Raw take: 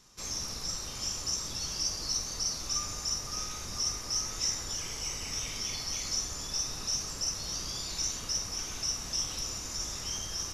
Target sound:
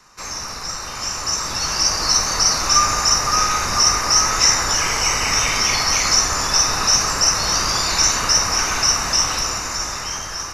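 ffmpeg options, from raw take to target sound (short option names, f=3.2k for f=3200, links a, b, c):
-filter_complex "[0:a]equalizer=f=1.4k:w=0.44:g=7.5,acrossover=split=160|810|1800[a][b][c][d];[c]acontrast=77[e];[d]bandreject=f=3.3k:w=5.3[f];[a][b][e][f]amix=inputs=4:normalize=0,dynaudnorm=f=360:g=9:m=10dB,volume=4.5dB"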